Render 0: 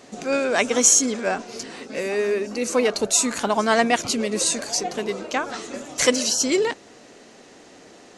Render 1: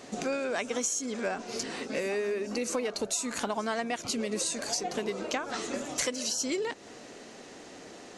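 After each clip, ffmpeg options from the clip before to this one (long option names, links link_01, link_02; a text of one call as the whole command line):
ffmpeg -i in.wav -af "acompressor=threshold=-28dB:ratio=12" out.wav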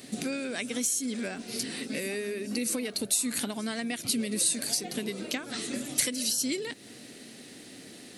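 ffmpeg -i in.wav -af "aexciter=amount=12.1:drive=5.5:freq=9500,equalizer=frequency=125:width_type=o:width=1:gain=10,equalizer=frequency=250:width_type=o:width=1:gain=9,equalizer=frequency=1000:width_type=o:width=1:gain=-6,equalizer=frequency=2000:width_type=o:width=1:gain=6,equalizer=frequency=4000:width_type=o:width=1:gain=10,equalizer=frequency=8000:width_type=o:width=1:gain=5,volume=-7dB" out.wav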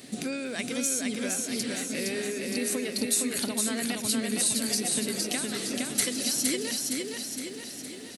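ffmpeg -i in.wav -af "aecho=1:1:464|928|1392|1856|2320|2784|3248|3712:0.708|0.389|0.214|0.118|0.0648|0.0356|0.0196|0.0108" out.wav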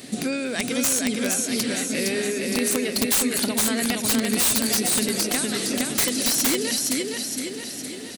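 ffmpeg -i in.wav -af "aeval=exprs='(mod(9.44*val(0)+1,2)-1)/9.44':channel_layout=same,volume=6.5dB" out.wav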